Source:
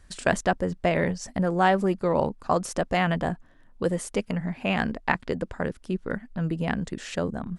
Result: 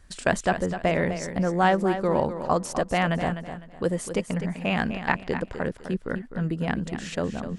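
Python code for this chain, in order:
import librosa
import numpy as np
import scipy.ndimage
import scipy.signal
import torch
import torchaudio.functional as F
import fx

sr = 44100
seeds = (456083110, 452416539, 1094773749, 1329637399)

y = fx.echo_feedback(x, sr, ms=253, feedback_pct=28, wet_db=-10.0)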